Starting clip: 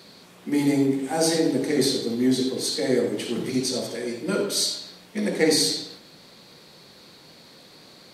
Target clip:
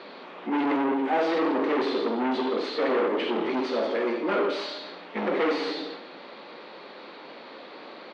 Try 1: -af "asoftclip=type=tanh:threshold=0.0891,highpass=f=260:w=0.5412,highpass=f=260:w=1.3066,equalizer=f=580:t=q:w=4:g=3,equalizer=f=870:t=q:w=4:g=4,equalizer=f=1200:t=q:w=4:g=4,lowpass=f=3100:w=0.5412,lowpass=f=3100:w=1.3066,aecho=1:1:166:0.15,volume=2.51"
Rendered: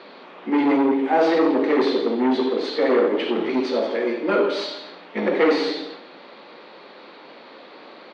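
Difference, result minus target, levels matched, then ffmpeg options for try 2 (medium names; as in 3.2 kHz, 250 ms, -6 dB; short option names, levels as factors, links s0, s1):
saturation: distortion -6 dB
-af "asoftclip=type=tanh:threshold=0.0299,highpass=f=260:w=0.5412,highpass=f=260:w=1.3066,equalizer=f=580:t=q:w=4:g=3,equalizer=f=870:t=q:w=4:g=4,equalizer=f=1200:t=q:w=4:g=4,lowpass=f=3100:w=0.5412,lowpass=f=3100:w=1.3066,aecho=1:1:166:0.15,volume=2.51"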